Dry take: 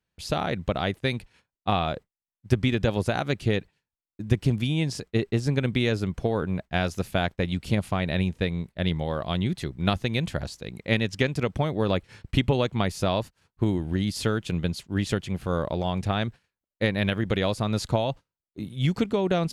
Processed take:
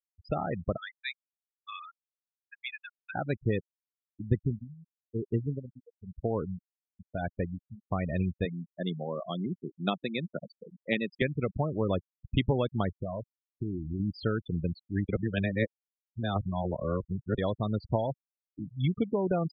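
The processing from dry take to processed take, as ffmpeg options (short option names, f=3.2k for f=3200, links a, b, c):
-filter_complex "[0:a]asettb=1/sr,asplit=3[a][b][c];[a]atrim=end=0.774[d];[b]atrim=start=0.77:end=3.15,asetpts=PTS-STARTPTS,afade=t=in:d=0.004:c=qsin,afade=t=out:st=2.376:d=0.004:c=qsin,highpass=f=1.3k:w=0.5412,highpass=f=1.3k:w=1.3066[e];[c]atrim=start=3.146[f];[d][e]acrossfade=d=0.004:c1=hsin:c2=qsin[g];[g][f]acrossfade=d=0.004:c1=qsin:c2=hsin,asettb=1/sr,asplit=3[h][i][j];[h]atrim=end=4.354[k];[i]atrim=start=4.35:end=7.88,asetpts=PTS-STARTPTS,afade=t=in:d=0.004:c=qsin,afade=t=out:st=3.526:d=0.004:c=qsin,aeval=exprs='val(0)*pow(10,-18*(0.5-0.5*cos(2*PI*1*n/s))/20)':c=same[l];[j]atrim=start=7.876[m];[k][l]acrossfade=d=0.004:c1=hsin:c2=qsin[n];[n][m]acrossfade=d=0.004:c1=qsin:c2=hsin,asettb=1/sr,asplit=3[o][p][q];[o]atrim=end=8.454[r];[p]atrim=start=8.45:end=11.22,asetpts=PTS-STARTPTS,afade=t=in:d=0.004:c=qsin,afade=t=out:st=2.766:d=0.004:c=qsin,highpass=f=170:w=0.5412,highpass=f=170:w=1.3066[s];[q]atrim=start=11.216[t];[r][s]acrossfade=d=0.004:c1=hsin:c2=qsin[u];[u][t]acrossfade=d=0.004:c1=qsin:c2=hsin,asettb=1/sr,asplit=3[v][w][x];[v]atrim=end=12.974[y];[w]atrim=start=12.97:end=14,asetpts=PTS-STARTPTS,afade=t=in:d=0.004:c=qsin,afade=t=out:st=1.026:d=0.004:c=qsin,acompressor=threshold=-26dB:ratio=3:attack=3.2:release=140:knee=1:detection=peak[z];[x]atrim=start=13.996[aa];[y][z]acrossfade=d=0.004:c1=hsin:c2=qsin[ab];[ab][aa]acrossfade=d=0.004:c1=qsin:c2=hsin,asplit=3[ac][ad][ae];[ac]atrim=end=15.092[af];[ad]atrim=start=15.088:end=17.382,asetpts=PTS-STARTPTS,areverse[ag];[ae]atrim=start=17.378[ah];[af][ag]acrossfade=d=0.004:c1=hsin:c2=hsin[ai];[ai][ah]acrossfade=d=0.004:c1=hsin:c2=hsin,afftfilt=real='re*gte(hypot(re,im),0.0794)':imag='im*gte(hypot(re,im),0.0794)':win_size=1024:overlap=0.75,volume=-4dB"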